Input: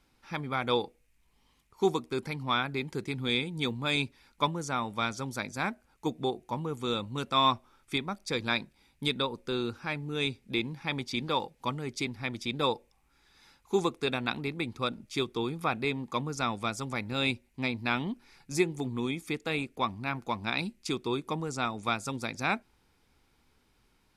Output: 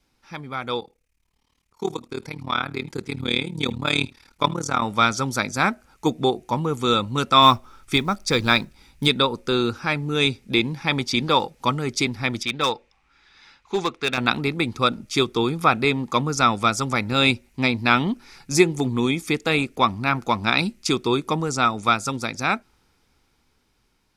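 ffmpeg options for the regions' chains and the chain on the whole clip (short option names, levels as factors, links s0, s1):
-filter_complex "[0:a]asettb=1/sr,asplit=3[s0][s1][s2];[s0]atrim=end=0.804[s3];[s1]atrim=start=0.8:end=4.82,asetpts=PTS-STARTPTS,afade=t=in:d=0.004:c=qsin,afade=t=out:st=4.016:d=0.004:c=qsin,tremolo=f=37:d=0.919,aecho=1:1:76:0.0708,atrim=end_sample=177282[s4];[s2]atrim=start=4.816[s5];[s3][s4]acrossfade=d=0.004:c1=hsin:c2=qsin[s6];[s6][s5]acrossfade=d=0.004:c1=qsin:c2=hsin,asettb=1/sr,asplit=3[s7][s8][s9];[s7]atrim=end=7.424[s10];[s8]atrim=start=7.42:end=9.08,asetpts=PTS-STARTPTS,afade=t=in:d=0.004:c=qsin,afade=t=out:st=1.656:d=0.004:c=qsin,lowshelf=f=79:g=9.5,acrusher=bits=8:mode=log:mix=0:aa=0.000001[s11];[s9]atrim=start=9.076[s12];[s10][s11]acrossfade=d=0.004:c1=hsin:c2=qsin[s13];[s13][s12]acrossfade=d=0.004:c1=qsin:c2=hsin,asettb=1/sr,asplit=3[s14][s15][s16];[s14]atrim=end=12.434[s17];[s15]atrim=start=12.43:end=14.18,asetpts=PTS-STARTPTS,afade=t=in:d=0.004:c=qsin,afade=t=out:st=1.746:d=0.004:c=qsin,lowpass=2500,tiltshelf=f=1500:g=-8,volume=18.8,asoftclip=hard,volume=0.0531[s18];[s16]atrim=start=14.176[s19];[s17][s18]acrossfade=d=0.004:c1=hsin:c2=qsin[s20];[s20][s19]acrossfade=d=0.004:c1=qsin:c2=hsin,equalizer=f=5700:w=1.8:g=4,dynaudnorm=f=500:g=11:m=4.22,adynamicequalizer=threshold=0.00891:dfrequency=1300:dqfactor=8:tfrequency=1300:tqfactor=8:attack=5:release=100:ratio=0.375:range=4:mode=boostabove:tftype=bell"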